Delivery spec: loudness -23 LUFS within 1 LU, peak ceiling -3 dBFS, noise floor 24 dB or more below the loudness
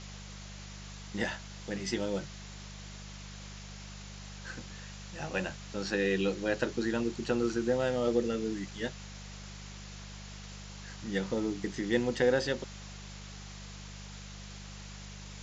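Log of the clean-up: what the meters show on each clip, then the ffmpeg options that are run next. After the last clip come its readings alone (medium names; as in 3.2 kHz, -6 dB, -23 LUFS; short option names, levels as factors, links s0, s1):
hum 50 Hz; highest harmonic 200 Hz; hum level -45 dBFS; noise floor -46 dBFS; noise floor target -57 dBFS; loudness -33.0 LUFS; peak level -14.5 dBFS; loudness target -23.0 LUFS
-> -af "bandreject=f=50:t=h:w=4,bandreject=f=100:t=h:w=4,bandreject=f=150:t=h:w=4,bandreject=f=200:t=h:w=4"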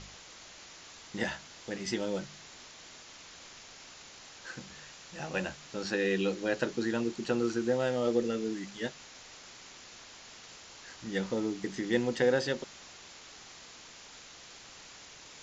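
hum not found; noise floor -52 dBFS; noise floor target -57 dBFS
-> -af "afftdn=nr=6:nf=-52"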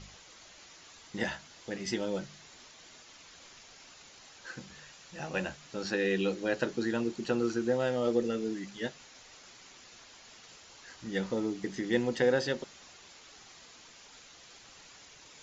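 noise floor -55 dBFS; noise floor target -57 dBFS
-> -af "afftdn=nr=6:nf=-55"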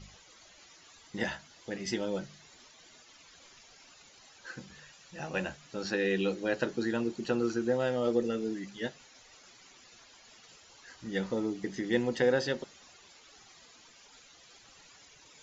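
noise floor -58 dBFS; loudness -32.5 LUFS; peak level -14.5 dBFS; loudness target -23.0 LUFS
-> -af "volume=2.99"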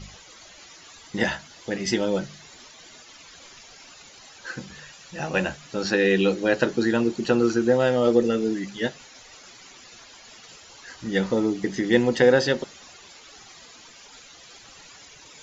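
loudness -23.0 LUFS; peak level -5.0 dBFS; noise floor -48 dBFS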